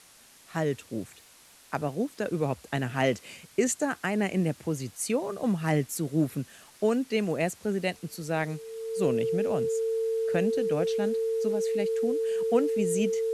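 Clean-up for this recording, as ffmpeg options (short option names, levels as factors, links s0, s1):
-af "adeclick=t=4,bandreject=f=450:w=30,afwtdn=0.0022"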